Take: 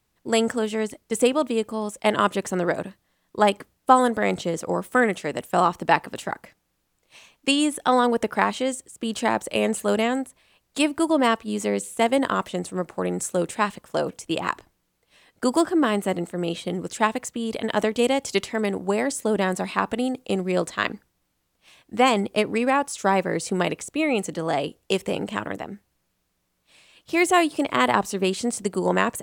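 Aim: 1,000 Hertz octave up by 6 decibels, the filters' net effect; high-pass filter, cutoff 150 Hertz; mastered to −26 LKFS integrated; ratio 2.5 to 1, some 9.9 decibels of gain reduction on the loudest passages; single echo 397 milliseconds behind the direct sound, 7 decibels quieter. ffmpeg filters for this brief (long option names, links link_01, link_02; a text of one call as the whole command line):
ffmpeg -i in.wav -af "highpass=150,equalizer=frequency=1000:width_type=o:gain=7.5,acompressor=threshold=-20dB:ratio=2.5,aecho=1:1:397:0.447,volume=-1dB" out.wav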